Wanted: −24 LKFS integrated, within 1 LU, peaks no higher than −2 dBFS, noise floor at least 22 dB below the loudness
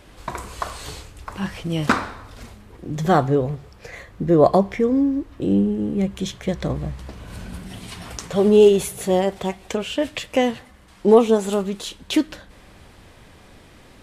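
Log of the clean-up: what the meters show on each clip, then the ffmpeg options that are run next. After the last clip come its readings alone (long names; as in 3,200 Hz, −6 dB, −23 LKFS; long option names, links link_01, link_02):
integrated loudness −20.5 LKFS; sample peak −1.5 dBFS; target loudness −24.0 LKFS
→ -af "volume=-3.5dB"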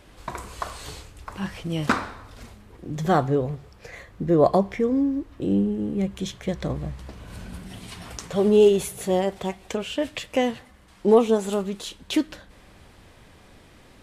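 integrated loudness −24.0 LKFS; sample peak −5.0 dBFS; background noise floor −52 dBFS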